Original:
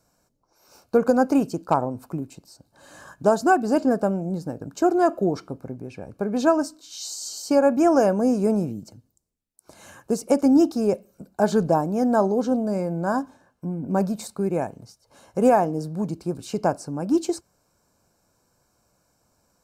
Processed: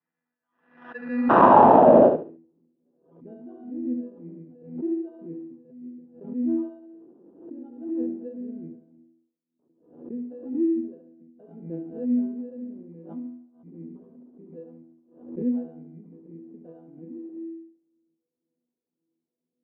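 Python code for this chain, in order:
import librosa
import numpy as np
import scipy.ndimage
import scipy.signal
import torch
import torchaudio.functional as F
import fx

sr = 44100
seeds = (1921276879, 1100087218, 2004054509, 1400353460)

y = fx.rattle_buzz(x, sr, strikes_db=-27.0, level_db=-19.0)
y = fx.low_shelf(y, sr, hz=320.0, db=7.5)
y = fx.resonator_bank(y, sr, root=52, chord='fifth', decay_s=0.84)
y = fx.phaser_stages(y, sr, stages=12, low_hz=250.0, high_hz=1800.0, hz=1.9, feedback_pct=35)
y = fx.spec_paint(y, sr, seeds[0], shape='noise', start_s=1.29, length_s=0.8, low_hz=1500.0, high_hz=3300.0, level_db=-17.0)
y = fx.sample_hold(y, sr, seeds[1], rate_hz=2200.0, jitter_pct=0)
y = fx.cabinet(y, sr, low_hz=190.0, low_slope=12, high_hz=5300.0, hz=(240.0, 890.0, 2300.0), db=(8, 3, 8))
y = fx.echo_feedback(y, sr, ms=70, feedback_pct=28, wet_db=-6.0)
y = fx.filter_sweep_lowpass(y, sr, from_hz=1800.0, to_hz=370.0, start_s=0.87, end_s=2.49, q=4.3)
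y = fx.pre_swell(y, sr, db_per_s=100.0)
y = y * librosa.db_to_amplitude(-3.0)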